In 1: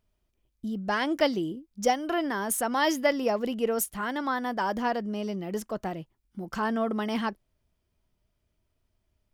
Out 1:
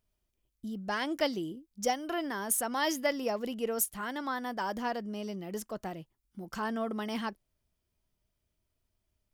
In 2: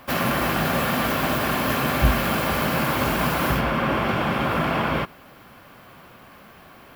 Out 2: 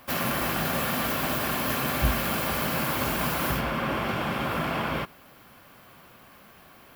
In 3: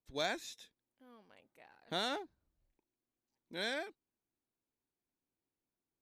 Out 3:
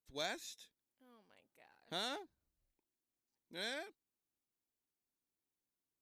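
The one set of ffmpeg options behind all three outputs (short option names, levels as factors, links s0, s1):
-af "highshelf=f=4400:g=7,volume=0.501"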